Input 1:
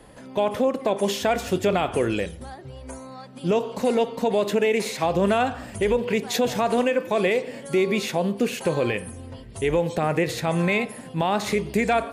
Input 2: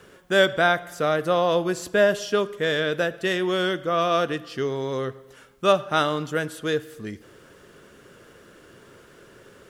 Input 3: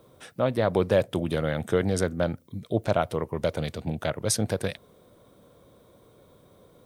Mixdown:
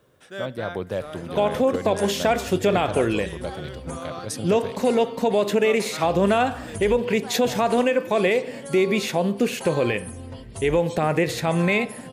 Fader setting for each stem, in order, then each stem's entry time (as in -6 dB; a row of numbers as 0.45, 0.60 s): +1.5, -16.0, -6.5 dB; 1.00, 0.00, 0.00 s